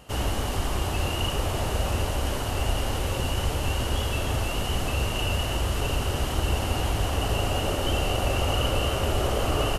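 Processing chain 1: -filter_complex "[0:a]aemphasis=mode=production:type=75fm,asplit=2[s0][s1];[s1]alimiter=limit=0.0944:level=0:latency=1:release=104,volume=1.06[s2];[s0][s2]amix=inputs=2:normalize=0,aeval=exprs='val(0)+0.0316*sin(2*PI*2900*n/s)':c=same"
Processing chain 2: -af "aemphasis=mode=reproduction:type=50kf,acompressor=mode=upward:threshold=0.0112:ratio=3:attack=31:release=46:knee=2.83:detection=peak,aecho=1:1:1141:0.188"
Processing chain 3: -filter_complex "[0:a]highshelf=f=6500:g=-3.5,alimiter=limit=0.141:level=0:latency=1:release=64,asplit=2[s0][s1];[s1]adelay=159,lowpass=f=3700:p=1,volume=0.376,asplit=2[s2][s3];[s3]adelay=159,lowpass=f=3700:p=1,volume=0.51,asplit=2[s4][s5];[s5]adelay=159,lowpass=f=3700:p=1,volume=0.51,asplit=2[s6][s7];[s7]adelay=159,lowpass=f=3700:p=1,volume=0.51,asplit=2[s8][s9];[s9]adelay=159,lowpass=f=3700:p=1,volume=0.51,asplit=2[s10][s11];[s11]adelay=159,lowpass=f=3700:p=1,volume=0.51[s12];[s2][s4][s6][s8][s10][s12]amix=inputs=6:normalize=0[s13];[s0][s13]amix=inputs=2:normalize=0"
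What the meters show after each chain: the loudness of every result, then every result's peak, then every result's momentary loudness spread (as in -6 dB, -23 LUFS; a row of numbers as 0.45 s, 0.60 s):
-19.0 LUFS, -27.5 LUFS, -27.5 LUFS; -7.0 dBFS, -12.5 dBFS, -14.5 dBFS; 1 LU, 3 LU, 2 LU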